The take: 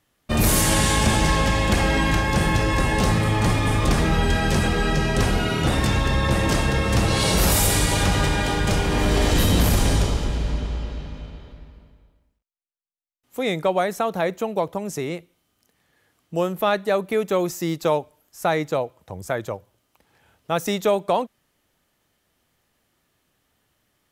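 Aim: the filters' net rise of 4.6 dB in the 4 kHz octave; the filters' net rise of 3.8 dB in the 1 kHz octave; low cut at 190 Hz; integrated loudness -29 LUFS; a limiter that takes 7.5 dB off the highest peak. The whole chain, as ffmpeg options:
-af "highpass=190,equalizer=f=1000:t=o:g=4.5,equalizer=f=4000:t=o:g=5.5,volume=0.501,alimiter=limit=0.112:level=0:latency=1"

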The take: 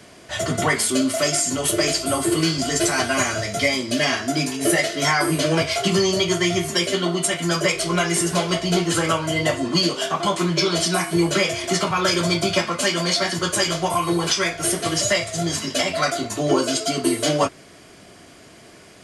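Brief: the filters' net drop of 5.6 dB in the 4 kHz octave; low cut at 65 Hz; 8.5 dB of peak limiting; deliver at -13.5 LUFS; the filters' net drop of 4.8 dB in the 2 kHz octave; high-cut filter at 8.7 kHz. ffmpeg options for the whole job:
-af "highpass=65,lowpass=8700,equalizer=f=2000:t=o:g=-4.5,equalizer=f=4000:t=o:g=-6,volume=3.76,alimiter=limit=0.631:level=0:latency=1"

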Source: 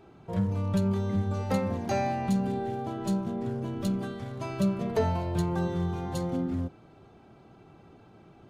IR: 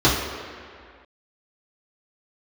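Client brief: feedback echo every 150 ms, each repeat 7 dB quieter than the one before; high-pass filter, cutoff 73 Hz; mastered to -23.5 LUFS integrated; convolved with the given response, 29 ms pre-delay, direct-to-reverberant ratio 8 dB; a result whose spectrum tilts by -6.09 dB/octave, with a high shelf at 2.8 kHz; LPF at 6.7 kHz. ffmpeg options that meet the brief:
-filter_complex "[0:a]highpass=73,lowpass=6700,highshelf=f=2800:g=3,aecho=1:1:150|300|450|600|750:0.447|0.201|0.0905|0.0407|0.0183,asplit=2[s0][s1];[1:a]atrim=start_sample=2205,adelay=29[s2];[s1][s2]afir=irnorm=-1:irlink=0,volume=0.0335[s3];[s0][s3]amix=inputs=2:normalize=0,volume=1.88"

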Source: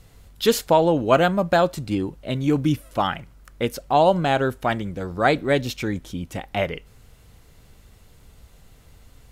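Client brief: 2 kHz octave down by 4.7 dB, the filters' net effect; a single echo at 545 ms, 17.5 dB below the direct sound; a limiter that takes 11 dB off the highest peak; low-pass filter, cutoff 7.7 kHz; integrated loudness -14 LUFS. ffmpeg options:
-af "lowpass=7700,equalizer=f=2000:t=o:g=-6.5,alimiter=limit=0.15:level=0:latency=1,aecho=1:1:545:0.133,volume=4.73"

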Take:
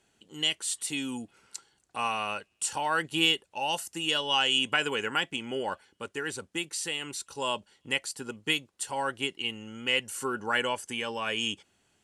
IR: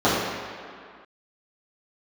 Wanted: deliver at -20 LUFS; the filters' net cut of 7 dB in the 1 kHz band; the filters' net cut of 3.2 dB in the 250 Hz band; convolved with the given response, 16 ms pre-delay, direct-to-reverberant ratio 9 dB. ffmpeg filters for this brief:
-filter_complex "[0:a]equalizer=f=250:t=o:g=-3.5,equalizer=f=1000:t=o:g=-9,asplit=2[s0][s1];[1:a]atrim=start_sample=2205,adelay=16[s2];[s1][s2]afir=irnorm=-1:irlink=0,volume=0.0266[s3];[s0][s3]amix=inputs=2:normalize=0,volume=3.55"

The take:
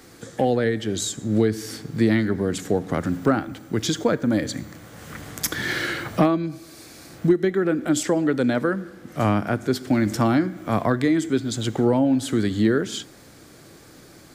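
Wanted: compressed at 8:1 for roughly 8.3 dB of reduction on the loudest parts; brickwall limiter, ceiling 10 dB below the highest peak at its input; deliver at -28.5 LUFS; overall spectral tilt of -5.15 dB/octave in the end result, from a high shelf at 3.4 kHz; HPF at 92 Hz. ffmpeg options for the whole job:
-af "highpass=92,highshelf=f=3400:g=-5,acompressor=threshold=0.0794:ratio=8,volume=1.33,alimiter=limit=0.126:level=0:latency=1"

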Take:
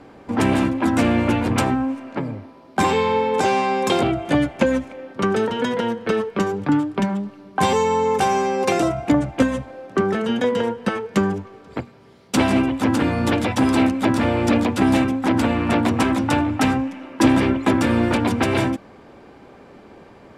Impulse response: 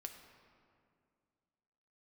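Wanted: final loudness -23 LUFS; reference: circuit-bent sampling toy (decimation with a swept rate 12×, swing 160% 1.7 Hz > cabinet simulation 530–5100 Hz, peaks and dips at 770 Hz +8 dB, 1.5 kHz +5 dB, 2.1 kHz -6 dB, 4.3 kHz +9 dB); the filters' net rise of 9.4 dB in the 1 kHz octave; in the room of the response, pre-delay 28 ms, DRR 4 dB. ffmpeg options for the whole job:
-filter_complex "[0:a]equalizer=f=1000:t=o:g=6,asplit=2[s0][s1];[1:a]atrim=start_sample=2205,adelay=28[s2];[s1][s2]afir=irnorm=-1:irlink=0,volume=1[s3];[s0][s3]amix=inputs=2:normalize=0,acrusher=samples=12:mix=1:aa=0.000001:lfo=1:lforange=19.2:lforate=1.7,highpass=530,equalizer=f=770:t=q:w=4:g=8,equalizer=f=1500:t=q:w=4:g=5,equalizer=f=2100:t=q:w=4:g=-6,equalizer=f=4300:t=q:w=4:g=9,lowpass=f=5100:w=0.5412,lowpass=f=5100:w=1.3066,volume=0.473"

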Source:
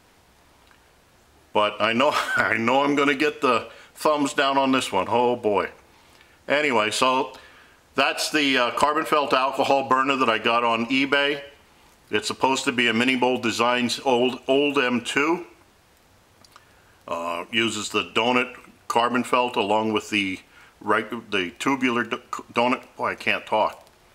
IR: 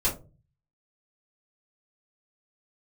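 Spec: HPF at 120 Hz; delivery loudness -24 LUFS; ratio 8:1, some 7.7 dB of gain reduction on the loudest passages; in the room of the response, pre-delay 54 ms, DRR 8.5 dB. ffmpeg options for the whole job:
-filter_complex "[0:a]highpass=120,acompressor=threshold=0.0708:ratio=8,asplit=2[s0][s1];[1:a]atrim=start_sample=2205,adelay=54[s2];[s1][s2]afir=irnorm=-1:irlink=0,volume=0.126[s3];[s0][s3]amix=inputs=2:normalize=0,volume=1.58"

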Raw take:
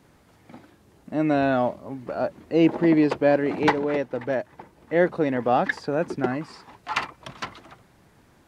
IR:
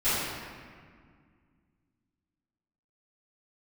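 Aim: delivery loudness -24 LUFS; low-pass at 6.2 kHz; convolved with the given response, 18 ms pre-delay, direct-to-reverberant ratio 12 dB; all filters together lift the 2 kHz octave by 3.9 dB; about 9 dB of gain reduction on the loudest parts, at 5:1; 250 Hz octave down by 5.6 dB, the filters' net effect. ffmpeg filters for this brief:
-filter_complex "[0:a]lowpass=6200,equalizer=f=250:t=o:g=-8,equalizer=f=2000:t=o:g=5,acompressor=threshold=0.0501:ratio=5,asplit=2[s0][s1];[1:a]atrim=start_sample=2205,adelay=18[s2];[s1][s2]afir=irnorm=-1:irlink=0,volume=0.0531[s3];[s0][s3]amix=inputs=2:normalize=0,volume=2.37"

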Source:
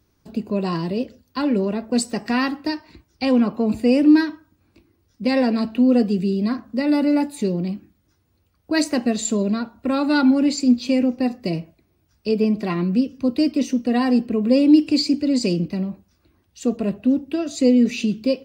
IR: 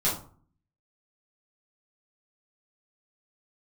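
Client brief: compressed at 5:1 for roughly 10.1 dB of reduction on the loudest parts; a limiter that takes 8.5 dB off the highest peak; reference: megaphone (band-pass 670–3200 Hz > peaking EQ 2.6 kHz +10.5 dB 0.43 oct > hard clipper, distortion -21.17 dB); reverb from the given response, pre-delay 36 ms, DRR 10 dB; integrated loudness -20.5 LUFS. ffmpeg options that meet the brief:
-filter_complex "[0:a]acompressor=threshold=0.1:ratio=5,alimiter=limit=0.1:level=0:latency=1,asplit=2[s0][s1];[1:a]atrim=start_sample=2205,adelay=36[s2];[s1][s2]afir=irnorm=-1:irlink=0,volume=0.1[s3];[s0][s3]amix=inputs=2:normalize=0,highpass=670,lowpass=3200,equalizer=f=2600:t=o:w=0.43:g=10.5,asoftclip=type=hard:threshold=0.0708,volume=5.96"

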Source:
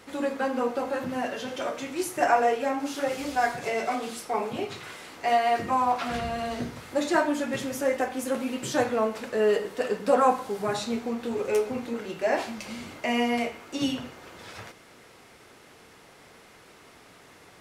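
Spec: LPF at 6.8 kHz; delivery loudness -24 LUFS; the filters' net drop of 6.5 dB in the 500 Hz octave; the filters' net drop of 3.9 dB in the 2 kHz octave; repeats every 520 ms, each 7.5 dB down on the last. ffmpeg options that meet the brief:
-af "lowpass=6800,equalizer=f=500:t=o:g=-8,equalizer=f=2000:t=o:g=-4.5,aecho=1:1:520|1040|1560|2080|2600:0.422|0.177|0.0744|0.0312|0.0131,volume=2.24"

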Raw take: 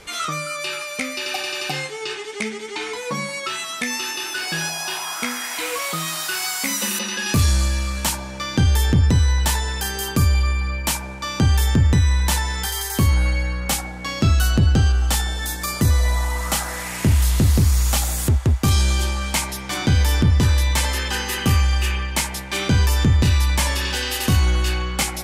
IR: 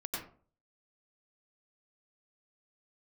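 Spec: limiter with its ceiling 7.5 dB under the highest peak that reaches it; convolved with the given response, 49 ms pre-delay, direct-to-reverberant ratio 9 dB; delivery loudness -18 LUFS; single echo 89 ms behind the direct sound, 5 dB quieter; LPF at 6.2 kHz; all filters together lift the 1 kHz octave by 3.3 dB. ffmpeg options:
-filter_complex "[0:a]lowpass=6200,equalizer=f=1000:t=o:g=4,alimiter=limit=0.168:level=0:latency=1,aecho=1:1:89:0.562,asplit=2[s0][s1];[1:a]atrim=start_sample=2205,adelay=49[s2];[s1][s2]afir=irnorm=-1:irlink=0,volume=0.282[s3];[s0][s3]amix=inputs=2:normalize=0,volume=1.78"

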